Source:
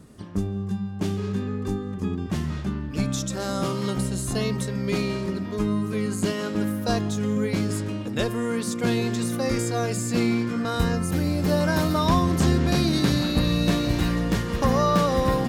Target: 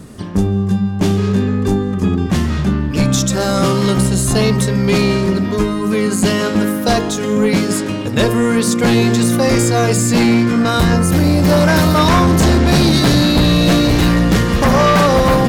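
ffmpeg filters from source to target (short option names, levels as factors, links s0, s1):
-af "bandreject=f=51.77:t=h:w=4,bandreject=f=103.54:t=h:w=4,bandreject=f=155.31:t=h:w=4,bandreject=f=207.08:t=h:w=4,bandreject=f=258.85:t=h:w=4,bandreject=f=310.62:t=h:w=4,bandreject=f=362.39:t=h:w=4,bandreject=f=414.16:t=h:w=4,bandreject=f=465.93:t=h:w=4,bandreject=f=517.7:t=h:w=4,bandreject=f=569.47:t=h:w=4,bandreject=f=621.24:t=h:w=4,bandreject=f=673.01:t=h:w=4,bandreject=f=724.78:t=h:w=4,bandreject=f=776.55:t=h:w=4,bandreject=f=828.32:t=h:w=4,bandreject=f=880.09:t=h:w=4,bandreject=f=931.86:t=h:w=4,bandreject=f=983.63:t=h:w=4,bandreject=f=1035.4:t=h:w=4,bandreject=f=1087.17:t=h:w=4,bandreject=f=1138.94:t=h:w=4,bandreject=f=1190.71:t=h:w=4,bandreject=f=1242.48:t=h:w=4,bandreject=f=1294.25:t=h:w=4,bandreject=f=1346.02:t=h:w=4,bandreject=f=1397.79:t=h:w=4,bandreject=f=1449.56:t=h:w=4,bandreject=f=1501.33:t=h:w=4,aeval=exprs='0.376*(cos(1*acos(clip(val(0)/0.376,-1,1)))-cos(1*PI/2))+0.188*(cos(5*acos(clip(val(0)/0.376,-1,1)))-cos(5*PI/2))':c=same,volume=1.41"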